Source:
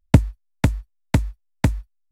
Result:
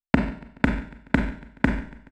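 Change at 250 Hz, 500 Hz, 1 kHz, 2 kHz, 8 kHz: 0.0 dB, -1.0 dB, +1.5 dB, +6.0 dB, under -10 dB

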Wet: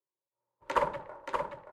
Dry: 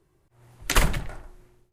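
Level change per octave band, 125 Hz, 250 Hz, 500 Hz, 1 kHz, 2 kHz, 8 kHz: -20.0 dB, -11.5 dB, +2.0 dB, +2.0 dB, -10.0 dB, -25.0 dB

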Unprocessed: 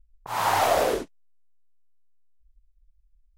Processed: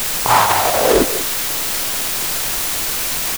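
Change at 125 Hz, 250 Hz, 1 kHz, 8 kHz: +12.5 dB, +14.5 dB, +9.5 dB, +21.0 dB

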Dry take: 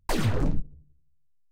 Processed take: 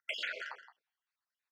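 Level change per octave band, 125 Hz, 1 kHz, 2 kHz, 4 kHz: under -40 dB, -13.0 dB, +0.5 dB, -1.5 dB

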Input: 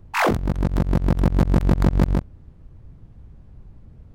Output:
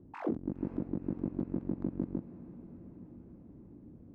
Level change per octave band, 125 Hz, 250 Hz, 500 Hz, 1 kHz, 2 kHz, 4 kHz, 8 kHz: -21.0 dB, -11.5 dB, -14.5 dB, -23.0 dB, under -25 dB, under -30 dB, no reading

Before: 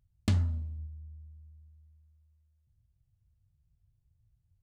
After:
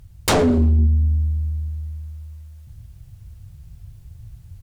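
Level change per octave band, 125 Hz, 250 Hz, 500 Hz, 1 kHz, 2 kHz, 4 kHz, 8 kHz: +14.5 dB, +18.5 dB, +29.5 dB, +26.0 dB, +20.5 dB, +19.0 dB, +22.5 dB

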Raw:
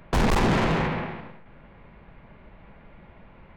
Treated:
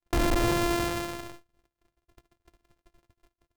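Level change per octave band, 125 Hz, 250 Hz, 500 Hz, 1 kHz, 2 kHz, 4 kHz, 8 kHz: -7.0 dB, -3.0 dB, -2.0 dB, -4.5 dB, -4.5 dB, -0.5 dB, +4.0 dB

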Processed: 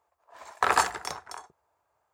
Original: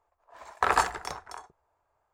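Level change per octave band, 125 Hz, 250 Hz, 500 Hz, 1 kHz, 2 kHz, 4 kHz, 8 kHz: -3.0 dB, 0.0 dB, 0.0 dB, +0.5 dB, +1.5 dB, +3.5 dB, +4.5 dB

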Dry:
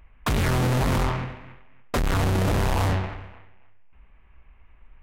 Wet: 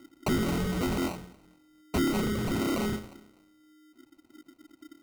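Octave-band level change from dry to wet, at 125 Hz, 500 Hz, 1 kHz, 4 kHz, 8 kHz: -11.5 dB, -4.0 dB, -8.5 dB, -4.0 dB, -4.0 dB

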